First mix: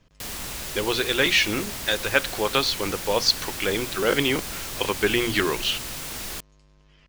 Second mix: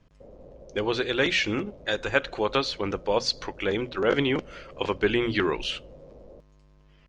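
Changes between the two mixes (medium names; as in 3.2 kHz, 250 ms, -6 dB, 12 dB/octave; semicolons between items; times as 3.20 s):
background: add four-pole ladder low-pass 580 Hz, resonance 75%; master: add treble shelf 2.1 kHz -8.5 dB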